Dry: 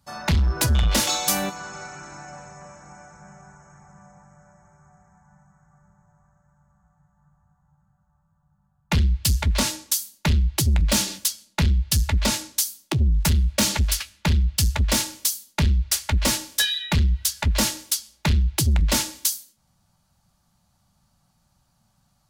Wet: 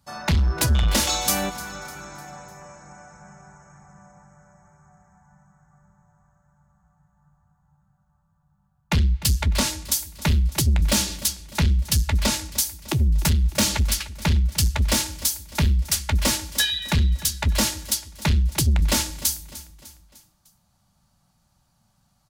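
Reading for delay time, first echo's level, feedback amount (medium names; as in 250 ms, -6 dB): 301 ms, -17.0 dB, 49%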